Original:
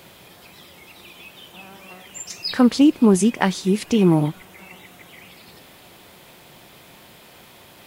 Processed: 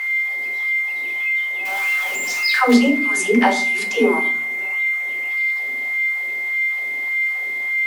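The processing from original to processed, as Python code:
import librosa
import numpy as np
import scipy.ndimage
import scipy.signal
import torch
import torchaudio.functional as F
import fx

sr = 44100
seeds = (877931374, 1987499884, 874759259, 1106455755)

y = fx.zero_step(x, sr, step_db=-30.0, at=(1.65, 2.74))
y = fx.dispersion(y, sr, late='lows', ms=128.0, hz=350.0)
y = y + 10.0 ** (-25.0 / 20.0) * np.sin(2.0 * np.pi * 2100.0 * np.arange(len(y)) / sr)
y = fx.filter_lfo_highpass(y, sr, shape='sine', hz=1.7, low_hz=350.0, high_hz=1800.0, q=2.0)
y = fx.rev_fdn(y, sr, rt60_s=0.49, lf_ratio=1.5, hf_ratio=0.65, size_ms=23.0, drr_db=1.5)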